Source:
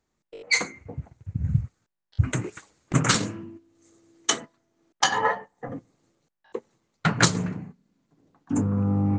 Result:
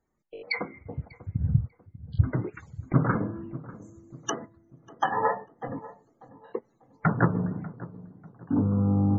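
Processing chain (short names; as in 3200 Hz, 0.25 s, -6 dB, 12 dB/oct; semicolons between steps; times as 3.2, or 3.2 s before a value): treble ducked by the level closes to 1200 Hz, closed at -23.5 dBFS; loudest bins only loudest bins 64; darkening echo 0.593 s, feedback 42%, low-pass 990 Hz, level -16.5 dB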